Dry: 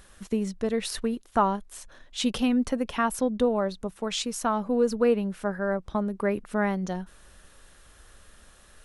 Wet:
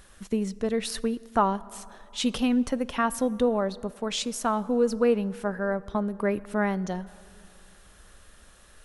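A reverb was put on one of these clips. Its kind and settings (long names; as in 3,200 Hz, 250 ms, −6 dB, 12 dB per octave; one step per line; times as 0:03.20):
dense smooth reverb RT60 2.7 s, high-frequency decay 0.5×, DRR 19 dB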